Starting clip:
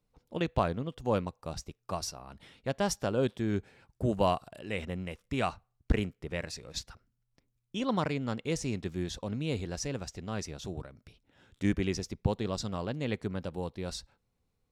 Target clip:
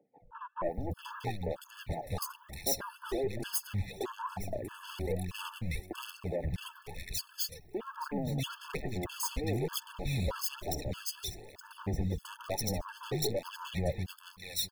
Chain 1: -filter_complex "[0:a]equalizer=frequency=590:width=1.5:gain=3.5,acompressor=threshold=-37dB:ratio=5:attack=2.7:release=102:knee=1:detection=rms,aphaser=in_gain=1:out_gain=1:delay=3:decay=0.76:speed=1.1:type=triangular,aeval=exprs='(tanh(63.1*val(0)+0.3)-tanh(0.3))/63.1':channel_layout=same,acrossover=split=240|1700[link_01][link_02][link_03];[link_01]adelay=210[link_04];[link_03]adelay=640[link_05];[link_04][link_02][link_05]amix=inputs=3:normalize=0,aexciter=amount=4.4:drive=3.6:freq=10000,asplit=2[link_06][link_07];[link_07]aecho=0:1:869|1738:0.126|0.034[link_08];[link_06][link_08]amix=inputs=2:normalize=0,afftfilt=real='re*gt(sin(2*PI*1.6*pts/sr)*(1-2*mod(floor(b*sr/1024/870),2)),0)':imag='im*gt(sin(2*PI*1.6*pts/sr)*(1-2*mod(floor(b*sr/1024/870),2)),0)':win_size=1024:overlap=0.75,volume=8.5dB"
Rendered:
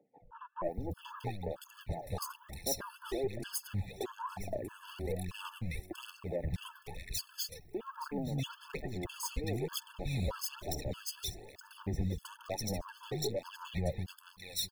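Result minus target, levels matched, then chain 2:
downward compressor: peak gain reduction +6.5 dB
-filter_complex "[0:a]equalizer=frequency=590:width=1.5:gain=3.5,acompressor=threshold=-29dB:ratio=5:attack=2.7:release=102:knee=1:detection=rms,aphaser=in_gain=1:out_gain=1:delay=3:decay=0.76:speed=1.1:type=triangular,aeval=exprs='(tanh(63.1*val(0)+0.3)-tanh(0.3))/63.1':channel_layout=same,acrossover=split=240|1700[link_01][link_02][link_03];[link_01]adelay=210[link_04];[link_03]adelay=640[link_05];[link_04][link_02][link_05]amix=inputs=3:normalize=0,aexciter=amount=4.4:drive=3.6:freq=10000,asplit=2[link_06][link_07];[link_07]aecho=0:1:869|1738:0.126|0.034[link_08];[link_06][link_08]amix=inputs=2:normalize=0,afftfilt=real='re*gt(sin(2*PI*1.6*pts/sr)*(1-2*mod(floor(b*sr/1024/870),2)),0)':imag='im*gt(sin(2*PI*1.6*pts/sr)*(1-2*mod(floor(b*sr/1024/870),2)),0)':win_size=1024:overlap=0.75,volume=8.5dB"

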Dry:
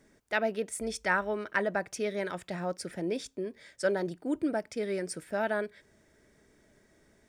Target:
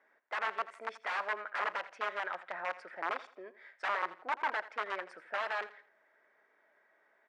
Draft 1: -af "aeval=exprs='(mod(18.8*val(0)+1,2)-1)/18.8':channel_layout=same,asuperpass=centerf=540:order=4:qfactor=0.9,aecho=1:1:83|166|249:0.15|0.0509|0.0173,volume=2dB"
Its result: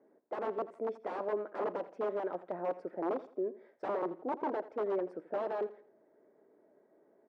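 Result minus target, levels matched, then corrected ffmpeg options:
500 Hz band +9.5 dB
-af "aeval=exprs='(mod(18.8*val(0)+1,2)-1)/18.8':channel_layout=same,asuperpass=centerf=1200:order=4:qfactor=0.9,aecho=1:1:83|166|249:0.15|0.0509|0.0173,volume=2dB"

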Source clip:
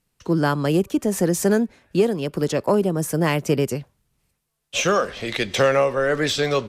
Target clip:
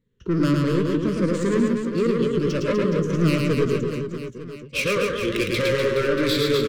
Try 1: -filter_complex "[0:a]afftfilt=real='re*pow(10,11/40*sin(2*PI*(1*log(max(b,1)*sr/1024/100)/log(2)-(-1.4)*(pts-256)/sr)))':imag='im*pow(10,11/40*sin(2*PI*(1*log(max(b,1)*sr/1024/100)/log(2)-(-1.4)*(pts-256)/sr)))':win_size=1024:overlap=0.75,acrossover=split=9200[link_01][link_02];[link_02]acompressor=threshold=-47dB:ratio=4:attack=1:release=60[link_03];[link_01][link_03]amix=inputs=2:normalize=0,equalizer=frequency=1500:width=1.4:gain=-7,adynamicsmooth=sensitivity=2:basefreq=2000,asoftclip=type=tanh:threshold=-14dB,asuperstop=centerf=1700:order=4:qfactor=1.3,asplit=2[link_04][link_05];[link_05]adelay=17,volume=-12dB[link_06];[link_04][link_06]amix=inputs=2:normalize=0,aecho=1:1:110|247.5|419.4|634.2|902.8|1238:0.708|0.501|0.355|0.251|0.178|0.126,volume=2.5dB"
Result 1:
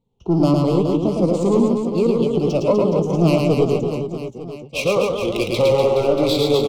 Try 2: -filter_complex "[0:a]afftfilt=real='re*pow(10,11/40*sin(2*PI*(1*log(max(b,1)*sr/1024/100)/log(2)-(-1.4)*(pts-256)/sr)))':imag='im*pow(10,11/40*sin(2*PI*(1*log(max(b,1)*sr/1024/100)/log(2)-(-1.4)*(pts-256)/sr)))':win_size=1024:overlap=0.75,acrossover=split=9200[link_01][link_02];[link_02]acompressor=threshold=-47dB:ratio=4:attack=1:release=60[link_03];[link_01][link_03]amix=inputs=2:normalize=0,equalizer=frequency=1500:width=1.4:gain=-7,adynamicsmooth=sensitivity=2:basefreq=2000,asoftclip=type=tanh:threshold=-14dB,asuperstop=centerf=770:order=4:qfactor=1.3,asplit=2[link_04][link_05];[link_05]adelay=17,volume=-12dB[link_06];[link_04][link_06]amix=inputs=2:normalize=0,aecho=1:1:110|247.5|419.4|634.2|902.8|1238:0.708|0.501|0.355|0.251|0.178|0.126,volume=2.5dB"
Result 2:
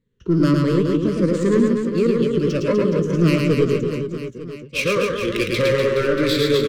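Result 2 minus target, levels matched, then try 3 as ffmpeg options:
soft clipping: distortion −6 dB
-filter_complex "[0:a]afftfilt=real='re*pow(10,11/40*sin(2*PI*(1*log(max(b,1)*sr/1024/100)/log(2)-(-1.4)*(pts-256)/sr)))':imag='im*pow(10,11/40*sin(2*PI*(1*log(max(b,1)*sr/1024/100)/log(2)-(-1.4)*(pts-256)/sr)))':win_size=1024:overlap=0.75,acrossover=split=9200[link_01][link_02];[link_02]acompressor=threshold=-47dB:ratio=4:attack=1:release=60[link_03];[link_01][link_03]amix=inputs=2:normalize=0,equalizer=frequency=1500:width=1.4:gain=-7,adynamicsmooth=sensitivity=2:basefreq=2000,asoftclip=type=tanh:threshold=-20.5dB,asuperstop=centerf=770:order=4:qfactor=1.3,asplit=2[link_04][link_05];[link_05]adelay=17,volume=-12dB[link_06];[link_04][link_06]amix=inputs=2:normalize=0,aecho=1:1:110|247.5|419.4|634.2|902.8|1238:0.708|0.501|0.355|0.251|0.178|0.126,volume=2.5dB"

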